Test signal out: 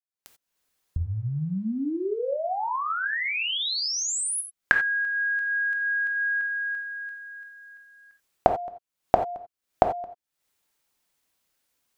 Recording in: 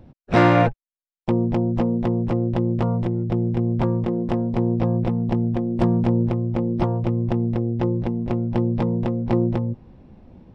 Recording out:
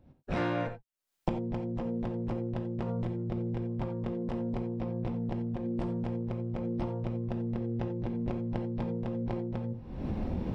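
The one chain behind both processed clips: recorder AGC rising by 62 dB/s; non-linear reverb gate 0.11 s flat, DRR 5.5 dB; gain -16 dB

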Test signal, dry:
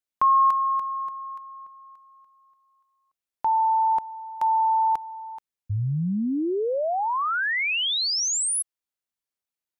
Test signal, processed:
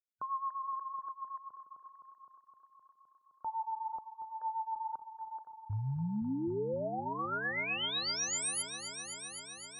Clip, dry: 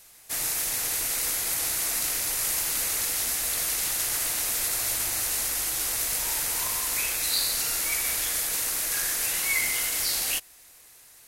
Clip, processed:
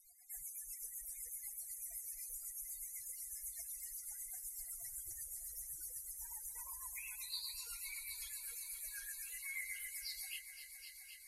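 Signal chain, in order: compressor 2.5:1, threshold -31 dBFS; limiter -26 dBFS; loudest bins only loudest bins 64; rotary speaker horn 8 Hz; multi-head echo 0.258 s, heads all three, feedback 64%, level -15 dB; gain -3.5 dB

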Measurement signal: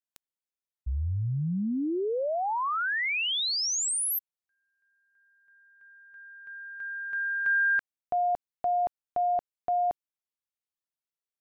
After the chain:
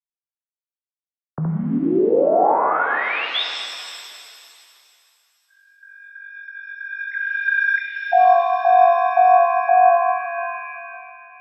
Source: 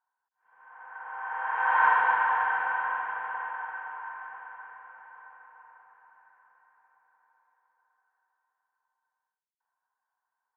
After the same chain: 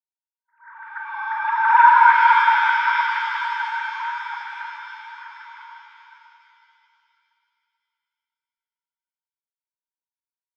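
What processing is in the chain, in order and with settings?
sine-wave speech; expander -55 dBFS; shimmer reverb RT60 2.5 s, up +7 st, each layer -8 dB, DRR 1.5 dB; gain +8 dB

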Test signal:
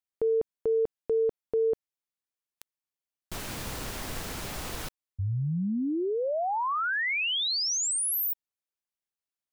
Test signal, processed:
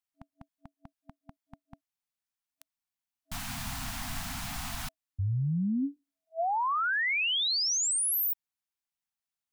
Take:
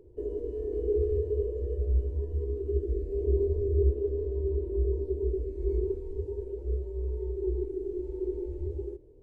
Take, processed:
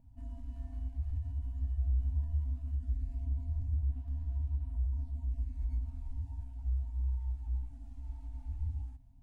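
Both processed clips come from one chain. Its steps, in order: limiter -24 dBFS; FFT band-reject 290–650 Hz

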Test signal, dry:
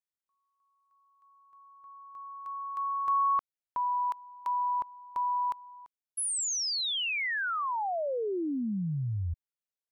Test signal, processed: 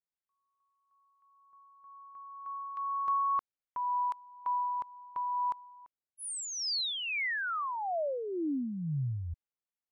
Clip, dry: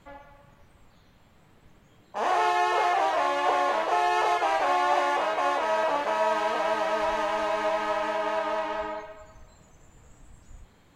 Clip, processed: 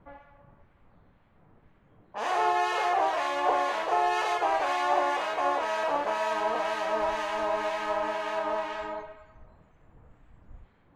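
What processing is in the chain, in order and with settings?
low-pass opened by the level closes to 1600 Hz, open at -25.5 dBFS; harmonic tremolo 2 Hz, depth 50%, crossover 1400 Hz

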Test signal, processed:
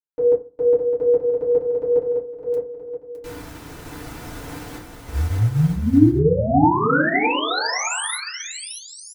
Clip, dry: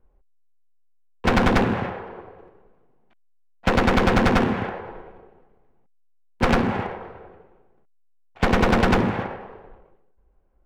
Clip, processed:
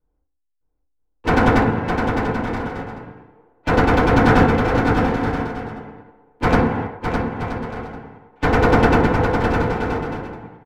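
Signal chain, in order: bouncing-ball echo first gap 0.61 s, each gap 0.6×, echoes 5; FDN reverb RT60 0.46 s, low-frequency decay 1.25×, high-frequency decay 0.3×, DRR -6 dB; upward expander 1.5:1, over -32 dBFS; gain -3 dB

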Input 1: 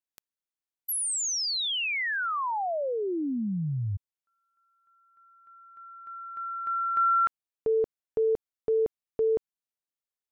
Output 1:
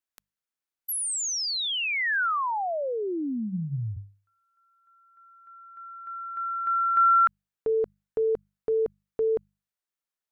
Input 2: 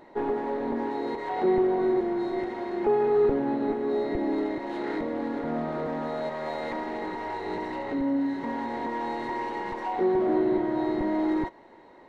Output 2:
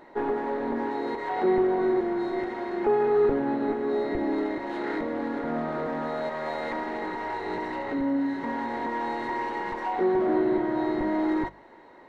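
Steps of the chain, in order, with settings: bell 1500 Hz +4.5 dB 1 oct; notches 50/100/150/200 Hz

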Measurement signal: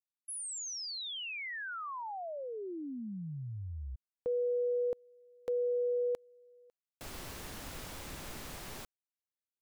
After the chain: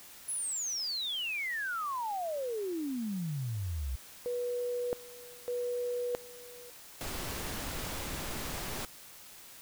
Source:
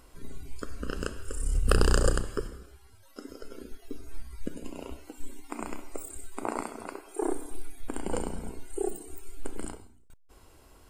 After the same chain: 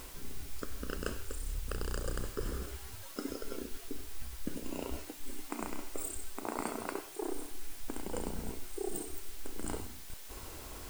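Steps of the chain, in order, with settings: reverse; compressor 8:1, threshold -42 dBFS; reverse; requantised 10-bit, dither triangular; gain +8.5 dB

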